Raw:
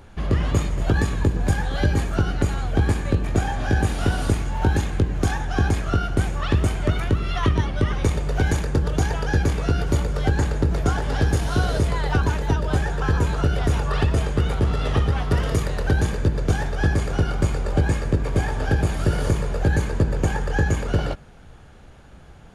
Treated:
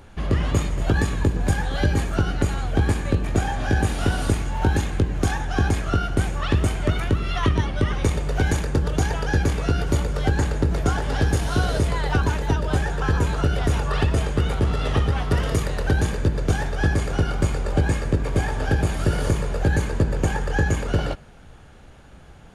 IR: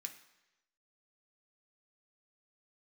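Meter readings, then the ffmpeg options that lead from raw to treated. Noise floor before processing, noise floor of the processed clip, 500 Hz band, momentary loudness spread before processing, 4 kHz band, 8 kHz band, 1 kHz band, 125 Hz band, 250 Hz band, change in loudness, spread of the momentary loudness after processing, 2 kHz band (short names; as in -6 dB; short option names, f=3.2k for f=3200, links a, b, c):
-45 dBFS, -45 dBFS, 0.0 dB, 2 LU, +1.0 dB, +1.5 dB, +0.5 dB, -0.5 dB, 0.0 dB, -0.5 dB, 2 LU, +0.5 dB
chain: -filter_complex "[0:a]asplit=2[a][b];[1:a]atrim=start_sample=2205,asetrate=48510,aresample=44100[c];[b][c]afir=irnorm=-1:irlink=0,volume=-11dB[d];[a][d]amix=inputs=2:normalize=0"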